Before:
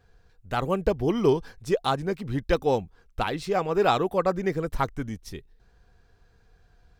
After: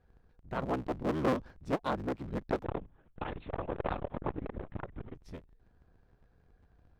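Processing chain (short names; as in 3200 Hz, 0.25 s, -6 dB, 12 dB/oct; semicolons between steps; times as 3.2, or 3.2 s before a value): cycle switcher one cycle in 3, inverted; LPF 1200 Hz 6 dB/oct; 2.64–5.15 LPC vocoder at 8 kHz whisper; core saturation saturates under 610 Hz; gain -5.5 dB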